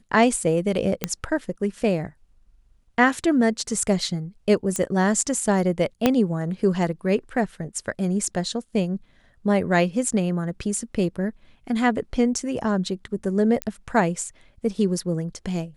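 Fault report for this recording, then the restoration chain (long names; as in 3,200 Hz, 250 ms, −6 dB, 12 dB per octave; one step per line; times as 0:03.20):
0:01.04: click −7 dBFS
0:04.76: click −12 dBFS
0:06.06: click −4 dBFS
0:13.62: click −10 dBFS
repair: click removal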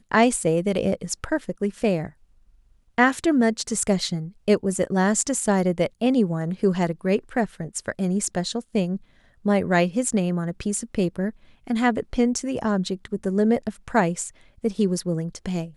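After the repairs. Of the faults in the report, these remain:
0:06.06: click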